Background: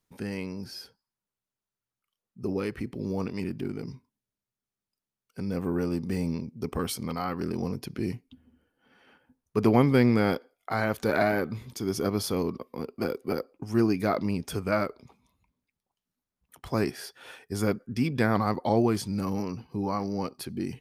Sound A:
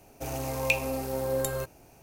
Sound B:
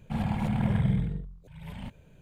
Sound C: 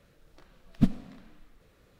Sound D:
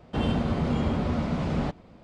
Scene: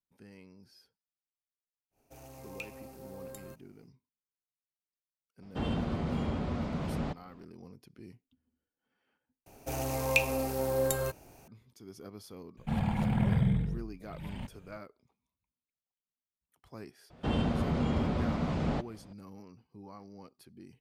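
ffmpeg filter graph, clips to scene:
ffmpeg -i bed.wav -i cue0.wav -i cue1.wav -i cue2.wav -i cue3.wav -filter_complex "[1:a]asplit=2[link_01][link_02];[4:a]asplit=2[link_03][link_04];[0:a]volume=-19.5dB[link_05];[2:a]acontrast=87[link_06];[link_05]asplit=2[link_07][link_08];[link_07]atrim=end=9.464[link_09];[link_02]atrim=end=2.02,asetpts=PTS-STARTPTS,volume=-0.5dB[link_10];[link_08]atrim=start=11.476[link_11];[link_01]atrim=end=2.02,asetpts=PTS-STARTPTS,volume=-17.5dB,afade=type=in:duration=0.1,afade=type=out:start_time=1.92:duration=0.1,adelay=1900[link_12];[link_03]atrim=end=2.03,asetpts=PTS-STARTPTS,volume=-7dB,afade=type=in:duration=0.004:curve=hsin,afade=type=out:start_time=2.026:duration=0.004:curve=hsin,adelay=5420[link_13];[link_06]atrim=end=2.21,asetpts=PTS-STARTPTS,volume=-8.5dB,afade=type=in:duration=0.004:curve=hsin,afade=type=out:start_time=2.206:duration=0.004:curve=hsin,adelay=12570[link_14];[link_04]atrim=end=2.03,asetpts=PTS-STARTPTS,volume=-4dB,afade=type=in:duration=0.004:curve=hsin,afade=type=out:start_time=2.026:duration=0.004:curve=hsin,adelay=17100[link_15];[link_09][link_10]acrossfade=duration=0.004:curve1=hsin:curve2=hsin[link_16];[link_16][link_11]acrossfade=duration=0.004:curve1=hsin:curve2=hsin[link_17];[link_17][link_12][link_13][link_14][link_15]amix=inputs=5:normalize=0" out.wav

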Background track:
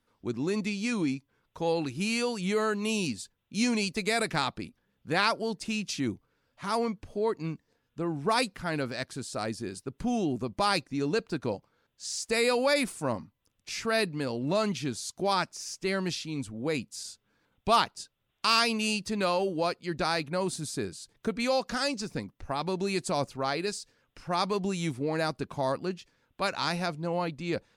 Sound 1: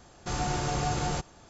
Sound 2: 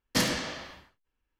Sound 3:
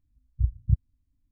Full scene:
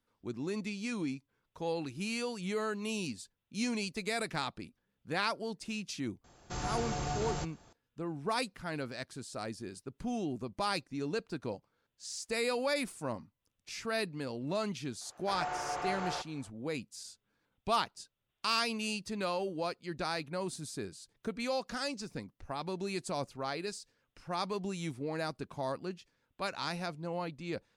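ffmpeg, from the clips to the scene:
ffmpeg -i bed.wav -i cue0.wav -filter_complex "[1:a]asplit=2[link_01][link_02];[0:a]volume=-7dB[link_03];[link_02]acrossover=split=460 2500:gain=0.0794 1 0.141[link_04][link_05][link_06];[link_04][link_05][link_06]amix=inputs=3:normalize=0[link_07];[link_01]atrim=end=1.49,asetpts=PTS-STARTPTS,volume=-6.5dB,afade=type=in:duration=0.004:curve=hsin,afade=type=out:start_time=1.486:duration=0.004:curve=hsin,adelay=6240[link_08];[link_07]atrim=end=1.49,asetpts=PTS-STARTPTS,volume=-2dB,afade=type=in:duration=0.004:curve=hsin,afade=type=out:start_time=1.486:duration=0.004:curve=hsin,adelay=15010[link_09];[link_03][link_08][link_09]amix=inputs=3:normalize=0" out.wav

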